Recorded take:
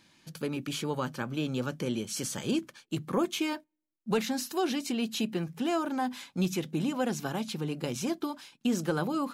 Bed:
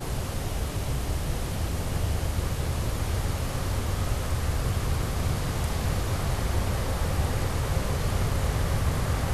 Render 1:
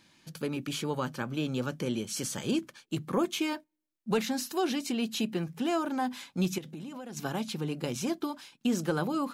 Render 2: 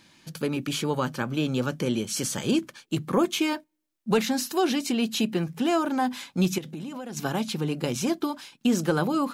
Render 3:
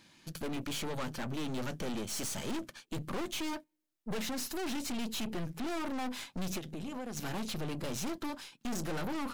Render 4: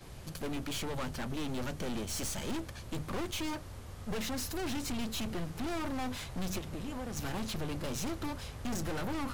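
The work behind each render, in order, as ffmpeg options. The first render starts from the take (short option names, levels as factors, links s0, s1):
-filter_complex "[0:a]asettb=1/sr,asplit=3[s0][s1][s2];[s0]atrim=end=6.584[s3];[s1]atrim=start=6.58:end=7.17,asetpts=PTS-STARTPTS,afade=t=in:d=0.004:c=qsin,afade=t=out:st=0.586:d=0.004:c=qsin,acompressor=threshold=0.0126:ratio=8:attack=3.2:release=140:knee=1:detection=peak[s4];[s2]atrim=start=7.166[s5];[s3][s4]acrossfade=d=0.004:c1=hsin:c2=qsin[s6];[s6][s5]acrossfade=d=0.004:c1=qsin:c2=hsin"
-af "volume=1.88"
-af "aeval=exprs='(tanh(56.2*val(0)+0.75)-tanh(0.75))/56.2':c=same"
-filter_complex "[1:a]volume=0.119[s0];[0:a][s0]amix=inputs=2:normalize=0"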